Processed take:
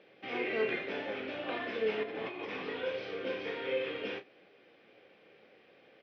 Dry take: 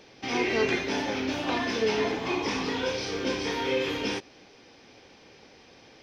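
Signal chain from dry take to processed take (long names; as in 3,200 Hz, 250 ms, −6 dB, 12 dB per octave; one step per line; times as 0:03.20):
loudspeaker in its box 200–3,100 Hz, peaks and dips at 260 Hz −6 dB, 540 Hz +4 dB, 920 Hz −9 dB
0:02.03–0:02.57: compressor whose output falls as the input rises −34 dBFS, ratio −1
double-tracking delay 32 ms −11 dB
level −6.5 dB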